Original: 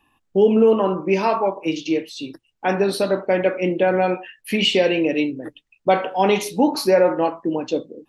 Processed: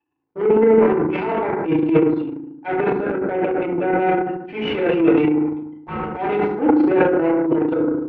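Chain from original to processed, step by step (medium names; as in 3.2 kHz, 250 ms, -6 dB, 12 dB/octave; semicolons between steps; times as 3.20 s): CVSD coder 64 kbps; 0.75–1.31 s: transient shaper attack -12 dB, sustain +7 dB; Chebyshev shaper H 6 -26 dB, 7 -18 dB, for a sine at -4.5 dBFS; compression 4:1, threshold -19 dBFS, peak gain reduction 9 dB; 2.89–4.00 s: distance through air 310 m; 5.29–5.94 s: ring modulator 540 Hz; cabinet simulation 110–2300 Hz, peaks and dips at 240 Hz -5 dB, 350 Hz +8 dB, 630 Hz -5 dB, 1.1 kHz -8 dB, 1.8 kHz -6 dB; hum notches 60/120/180/240/300/360/420/480 Hz; FDN reverb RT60 0.73 s, low-frequency decay 1.45×, high-frequency decay 0.45×, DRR -5.5 dB; transient shaper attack -7 dB, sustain +11 dB; trim -1 dB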